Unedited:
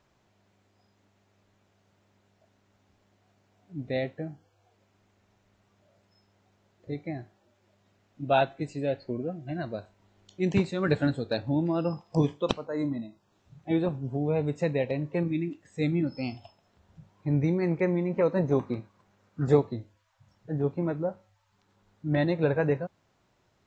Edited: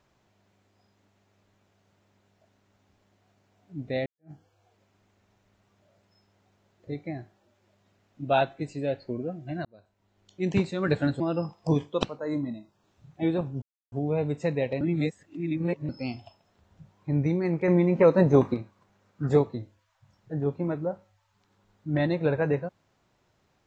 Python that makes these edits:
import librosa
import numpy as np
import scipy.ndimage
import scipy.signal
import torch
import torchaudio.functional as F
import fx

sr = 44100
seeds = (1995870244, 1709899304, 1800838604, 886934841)

y = fx.edit(x, sr, fx.fade_in_span(start_s=4.06, length_s=0.25, curve='exp'),
    fx.fade_in_span(start_s=9.65, length_s=0.91),
    fx.cut(start_s=11.2, length_s=0.48),
    fx.insert_silence(at_s=14.1, length_s=0.3),
    fx.reverse_span(start_s=14.99, length_s=1.08),
    fx.clip_gain(start_s=17.86, length_s=0.86, db=6.0), tone=tone)